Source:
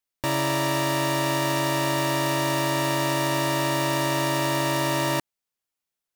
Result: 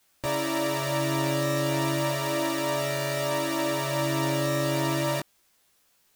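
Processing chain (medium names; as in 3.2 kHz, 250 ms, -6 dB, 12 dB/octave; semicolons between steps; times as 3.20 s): formant shift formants -3 st; added noise white -63 dBFS; chorus 0.33 Hz, delay 16.5 ms, depth 5.5 ms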